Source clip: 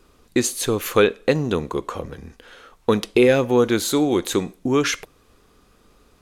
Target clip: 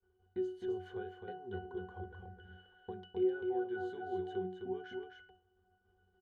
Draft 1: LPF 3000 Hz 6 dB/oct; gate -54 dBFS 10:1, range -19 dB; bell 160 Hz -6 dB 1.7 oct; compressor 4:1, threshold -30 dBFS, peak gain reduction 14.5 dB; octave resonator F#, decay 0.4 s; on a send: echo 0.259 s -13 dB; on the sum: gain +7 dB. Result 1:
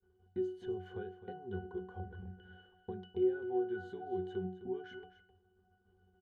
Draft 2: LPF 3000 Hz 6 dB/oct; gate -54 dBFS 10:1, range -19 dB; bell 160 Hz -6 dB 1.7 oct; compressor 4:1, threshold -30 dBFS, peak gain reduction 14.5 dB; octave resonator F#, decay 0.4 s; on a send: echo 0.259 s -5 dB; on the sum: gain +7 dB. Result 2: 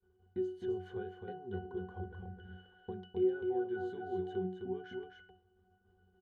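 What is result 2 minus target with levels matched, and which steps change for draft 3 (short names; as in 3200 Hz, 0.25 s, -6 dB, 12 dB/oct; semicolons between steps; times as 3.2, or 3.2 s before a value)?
125 Hz band +3.5 dB
change: bell 160 Hz -15.5 dB 1.7 oct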